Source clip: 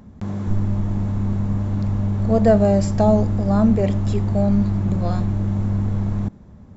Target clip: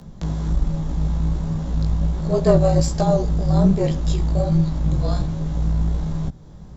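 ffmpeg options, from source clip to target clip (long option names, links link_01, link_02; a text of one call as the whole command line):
ffmpeg -i in.wav -filter_complex "[0:a]highshelf=frequency=3000:width_type=q:width=1.5:gain=6,asplit=2[link_01][link_02];[link_02]acompressor=threshold=-31dB:ratio=6,volume=2dB[link_03];[link_01][link_03]amix=inputs=2:normalize=0,flanger=delay=15:depth=6.3:speed=1.3,afreqshift=-41,aeval=exprs='(tanh(1.78*val(0)+0.55)-tanh(0.55))/1.78':channel_layout=same,volume=2.5dB" out.wav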